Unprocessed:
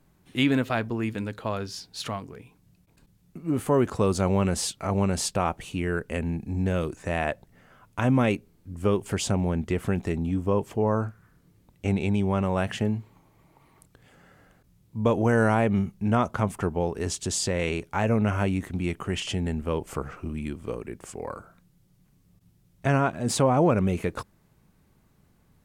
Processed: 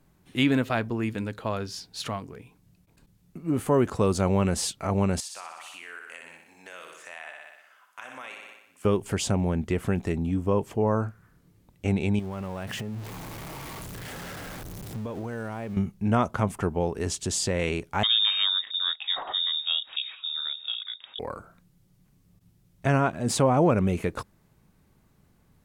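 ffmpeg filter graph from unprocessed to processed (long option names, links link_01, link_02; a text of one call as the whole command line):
ffmpeg -i in.wav -filter_complex "[0:a]asettb=1/sr,asplit=3[link_01][link_02][link_03];[link_01]atrim=end=5.204[link_04];[link_02]atrim=start=5.2:end=8.85,asetpts=PTS-STARTPTS,afade=type=in:duration=0.004:curve=qsin,afade=type=out:start_time=3.646:duration=0.004:curve=qsin,highpass=1200,aecho=1:1:61|122|183|244|305|366|427|488:0.473|0.274|0.159|0.0923|0.0535|0.0311|0.018|0.0104,atrim=end_sample=160965,acompressor=threshold=-40dB:ratio=2.5:attack=3.2:release=140:knee=1:detection=peak[link_05];[link_03]atrim=start=8.846[link_06];[link_04][link_05]acrossfade=duration=0.004:curve1=hsin:curve2=qsin[link_07];[link_07][link_06]acrossfade=duration=0.004:curve1=qsin:curve2=hsin,asettb=1/sr,asplit=3[link_08][link_09][link_10];[link_08]atrim=end=12.194[link_11];[link_09]atrim=start=12.19:end=15.77,asetpts=PTS-STARTPTS,afade=type=in:duration=0.004:curve=qsin,afade=type=out:start_time=3.576:duration=0.004:curve=qsin,aeval=exprs='val(0)+0.5*0.0211*sgn(val(0))':channel_layout=same,acompressor=threshold=-30dB:ratio=12:attack=3.2:release=140:knee=1:detection=peak[link_12];[link_10]atrim=start=15.766[link_13];[link_11][link_12]acrossfade=duration=0.004:curve1=hsin:curve2=qsin[link_14];[link_14][link_13]acrossfade=duration=0.004:curve1=qsin:curve2=hsin,asettb=1/sr,asplit=3[link_15][link_16][link_17];[link_15]atrim=end=18.034[link_18];[link_16]atrim=start=18.03:end=21.19,asetpts=PTS-STARTPTS,afade=type=in:duration=0.004:curve=qsin,afade=type=out:start_time=3.156:duration=0.004:curve=qsin,equalizer=frequency=1400:width_type=o:width=0.37:gain=-5.5,lowpass=frequency=3200:width_type=q:width=0.5098,lowpass=frequency=3200:width_type=q:width=0.6013,lowpass=frequency=3200:width_type=q:width=0.9,lowpass=frequency=3200:width_type=q:width=2.563,afreqshift=-3800[link_19];[link_17]atrim=start=21.186[link_20];[link_18][link_19]acrossfade=duration=0.004:curve1=hsin:curve2=qsin[link_21];[link_21][link_20]acrossfade=duration=0.004:curve1=qsin:curve2=hsin" out.wav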